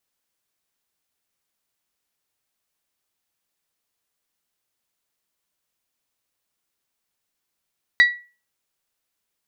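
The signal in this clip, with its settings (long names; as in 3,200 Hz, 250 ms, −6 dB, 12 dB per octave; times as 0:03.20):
struck glass bell, lowest mode 1,940 Hz, decay 0.34 s, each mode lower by 11 dB, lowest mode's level −7 dB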